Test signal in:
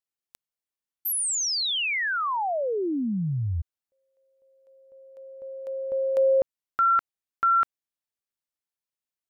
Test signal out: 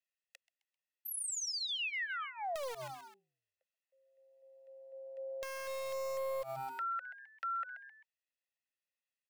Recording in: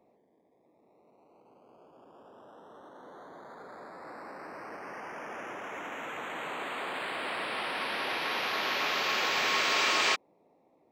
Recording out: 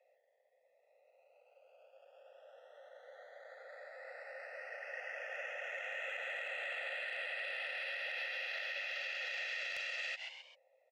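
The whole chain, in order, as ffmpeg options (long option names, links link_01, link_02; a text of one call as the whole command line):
ffmpeg -i in.wav -filter_complex "[0:a]asplit=3[link_01][link_02][link_03];[link_01]bandpass=frequency=530:width_type=q:width=8,volume=0dB[link_04];[link_02]bandpass=frequency=1840:width_type=q:width=8,volume=-6dB[link_05];[link_03]bandpass=frequency=2480:width_type=q:width=8,volume=-9dB[link_06];[link_04][link_05][link_06]amix=inputs=3:normalize=0,bass=frequency=250:gain=5,treble=frequency=4000:gain=7,aecho=1:1:1.5:0.68,acrossover=split=710[link_07][link_08];[link_07]acrusher=bits=3:dc=4:mix=0:aa=0.000001[link_09];[link_09][link_08]amix=inputs=2:normalize=0,acrossover=split=430[link_10][link_11];[link_10]acompressor=threshold=-57dB:ratio=1.5:knee=2.83:detection=peak[link_12];[link_12][link_11]amix=inputs=2:normalize=0,asplit=2[link_13][link_14];[link_14]asplit=3[link_15][link_16][link_17];[link_15]adelay=131,afreqshift=130,volume=-20dB[link_18];[link_16]adelay=262,afreqshift=260,volume=-27.1dB[link_19];[link_17]adelay=393,afreqshift=390,volume=-34.3dB[link_20];[link_18][link_19][link_20]amix=inputs=3:normalize=0[link_21];[link_13][link_21]amix=inputs=2:normalize=0,acompressor=threshold=-45dB:ratio=16:attack=0.19:release=137:knee=1:detection=peak,equalizer=frequency=260:width_type=o:width=0.37:gain=-9.5,volume=11dB" out.wav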